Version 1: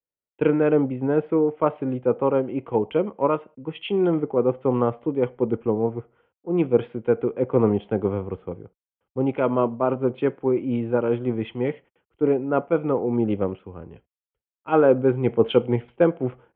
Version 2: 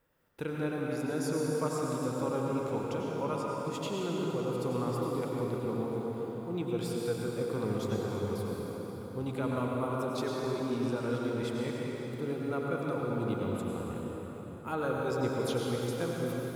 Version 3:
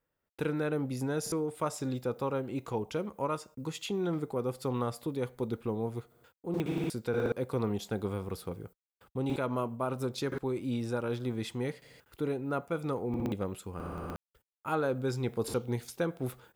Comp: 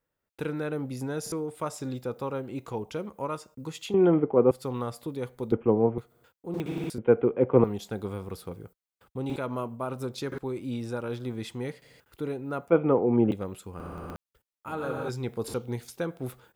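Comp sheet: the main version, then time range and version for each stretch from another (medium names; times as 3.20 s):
3
3.94–4.51 s: from 1
5.52–5.98 s: from 1
6.98–7.64 s: from 1
12.70–13.31 s: from 1
14.68–15.09 s: from 2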